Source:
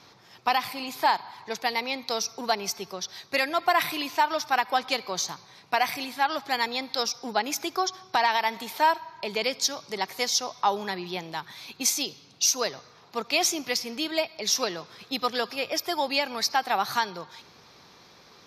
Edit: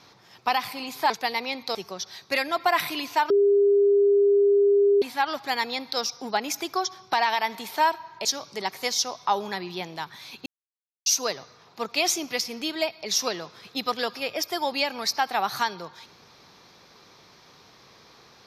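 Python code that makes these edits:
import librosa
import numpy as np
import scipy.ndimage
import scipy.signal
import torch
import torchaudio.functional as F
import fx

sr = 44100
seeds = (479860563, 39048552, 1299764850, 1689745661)

y = fx.edit(x, sr, fx.cut(start_s=1.1, length_s=0.41),
    fx.cut(start_s=2.16, length_s=0.61),
    fx.bleep(start_s=4.32, length_s=1.72, hz=403.0, db=-15.5),
    fx.cut(start_s=9.27, length_s=0.34),
    fx.silence(start_s=11.82, length_s=0.6), tone=tone)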